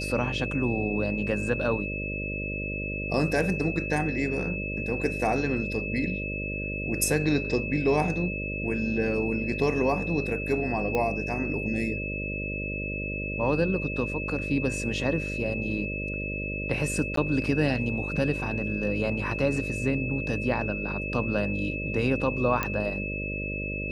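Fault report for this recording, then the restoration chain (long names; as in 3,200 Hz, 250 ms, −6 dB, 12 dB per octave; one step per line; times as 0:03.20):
mains buzz 50 Hz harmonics 12 −34 dBFS
whistle 2,600 Hz −33 dBFS
0:10.95: click −15 dBFS
0:17.16–0:17.17: drop-out 13 ms
0:22.63: click −12 dBFS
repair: click removal
hum removal 50 Hz, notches 12
notch filter 2,600 Hz, Q 30
repair the gap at 0:17.16, 13 ms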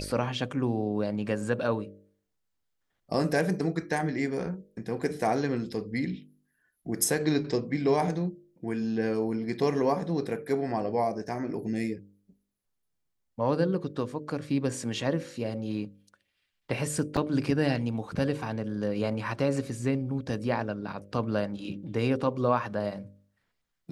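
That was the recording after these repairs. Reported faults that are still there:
none of them is left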